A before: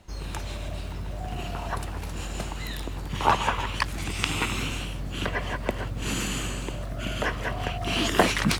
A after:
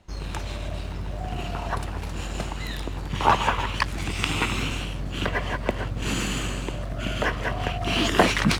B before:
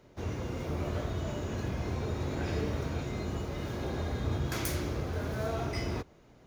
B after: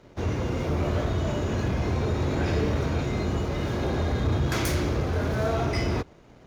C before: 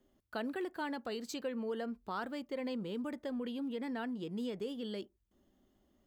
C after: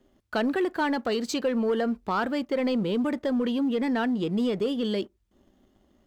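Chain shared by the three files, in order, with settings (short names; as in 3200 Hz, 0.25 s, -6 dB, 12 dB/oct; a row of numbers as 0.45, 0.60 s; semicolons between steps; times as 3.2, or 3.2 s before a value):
high shelf 9500 Hz -10 dB; sample leveller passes 1; match loudness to -27 LUFS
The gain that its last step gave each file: -1.0, +5.0, +10.0 dB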